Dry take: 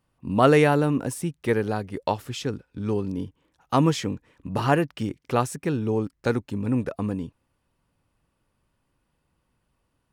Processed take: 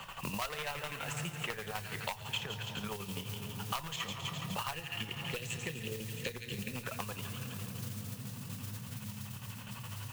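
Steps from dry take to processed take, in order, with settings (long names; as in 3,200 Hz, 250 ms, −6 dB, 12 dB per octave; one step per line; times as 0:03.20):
high-shelf EQ 6,100 Hz −9.5 dB
delay with a high-pass on its return 136 ms, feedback 57%, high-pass 1,900 Hz, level −7 dB
square-wave tremolo 12 Hz, depth 65%, duty 50%
0:04.73–0:06.83: Chebyshev band-stop filter 520–1,800 Hz, order 4
convolution reverb RT60 3.5 s, pre-delay 3 ms, DRR 14.5 dB
flanger 0.44 Hz, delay 0.2 ms, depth 8.2 ms, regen −74%
hard clipping −16 dBFS, distortion −9 dB
downward compressor, threshold −29 dBFS, peak gain reduction 10.5 dB
guitar amp tone stack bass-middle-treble 10-0-10
noise that follows the level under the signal 13 dB
mains-hum notches 60/120 Hz
multiband upward and downward compressor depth 100%
level +8.5 dB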